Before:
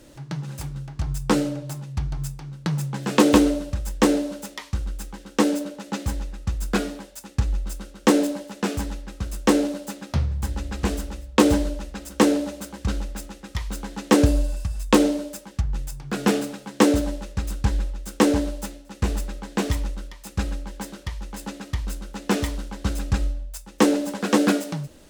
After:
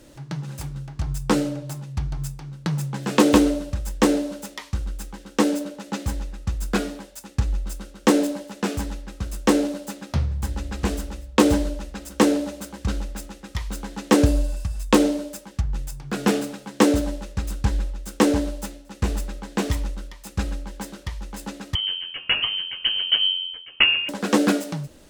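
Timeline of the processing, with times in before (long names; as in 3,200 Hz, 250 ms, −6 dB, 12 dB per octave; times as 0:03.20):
0:21.75–0:24.09: voice inversion scrambler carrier 3,100 Hz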